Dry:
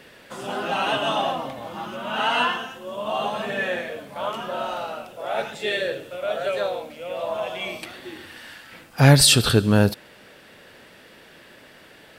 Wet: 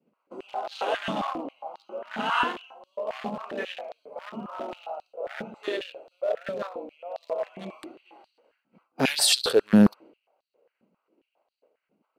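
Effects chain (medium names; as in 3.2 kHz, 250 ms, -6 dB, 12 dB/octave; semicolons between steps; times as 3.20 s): local Wiener filter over 25 samples; expander -42 dBFS; step-sequenced high-pass 7.4 Hz 200–4200 Hz; trim -6 dB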